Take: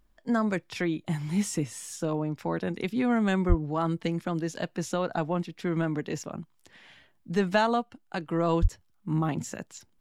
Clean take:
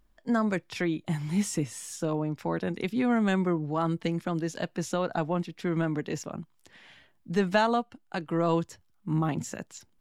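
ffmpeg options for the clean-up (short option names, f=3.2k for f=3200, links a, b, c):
-filter_complex "[0:a]asplit=3[a][b][c];[a]afade=t=out:st=3.48:d=0.02[d];[b]highpass=f=140:w=0.5412,highpass=f=140:w=1.3066,afade=t=in:st=3.48:d=0.02,afade=t=out:st=3.6:d=0.02[e];[c]afade=t=in:st=3.6:d=0.02[f];[d][e][f]amix=inputs=3:normalize=0,asplit=3[g][h][i];[g]afade=t=out:st=8.61:d=0.02[j];[h]highpass=f=140:w=0.5412,highpass=f=140:w=1.3066,afade=t=in:st=8.61:d=0.02,afade=t=out:st=8.73:d=0.02[k];[i]afade=t=in:st=8.73:d=0.02[l];[j][k][l]amix=inputs=3:normalize=0"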